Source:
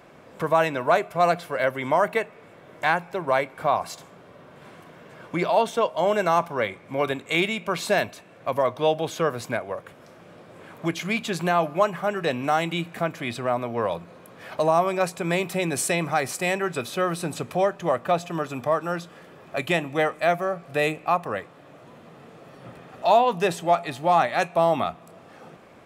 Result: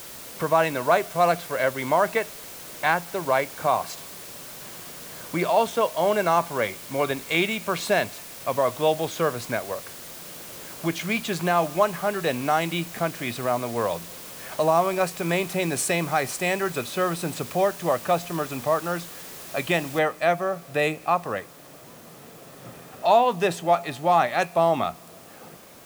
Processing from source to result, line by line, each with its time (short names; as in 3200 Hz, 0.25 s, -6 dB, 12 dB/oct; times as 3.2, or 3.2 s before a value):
19.99 noise floor step -41 dB -51 dB